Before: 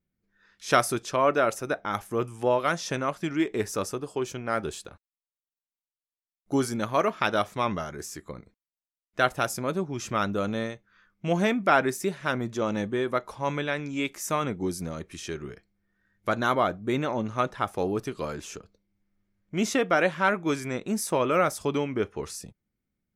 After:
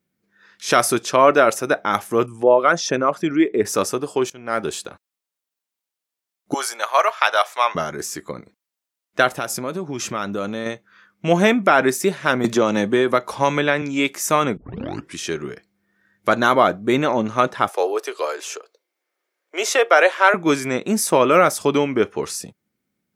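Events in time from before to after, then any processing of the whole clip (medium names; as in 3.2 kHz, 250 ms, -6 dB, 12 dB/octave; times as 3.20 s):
2.26–3.65 s: resonances exaggerated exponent 1.5
4.30–4.74 s: fade in, from -21.5 dB
6.54–7.75 s: high-pass 640 Hz 24 dB/octave
9.33–10.66 s: compression 4:1, threshold -31 dBFS
11.29–11.82 s: band-stop 4.6 kHz, Q 7.3
12.44–13.82 s: three bands compressed up and down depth 100%
14.57 s: tape start 0.59 s
17.69–20.34 s: steep high-pass 400 Hz
whole clip: Bessel high-pass 190 Hz, order 2; loudness maximiser +11 dB; trim -1 dB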